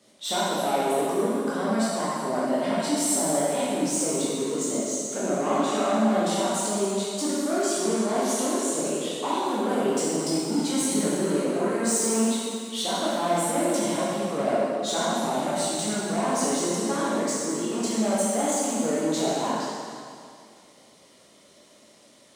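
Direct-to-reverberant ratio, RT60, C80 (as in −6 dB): −8.5 dB, 2.2 s, −1.5 dB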